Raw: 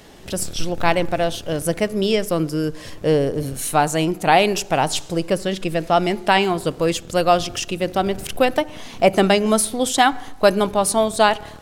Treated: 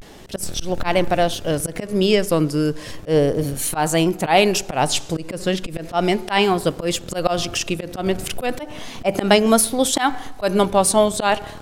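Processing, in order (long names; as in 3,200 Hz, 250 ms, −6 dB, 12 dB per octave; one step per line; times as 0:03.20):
volume swells 122 ms
pitch vibrato 0.34 Hz 60 cents
level +2.5 dB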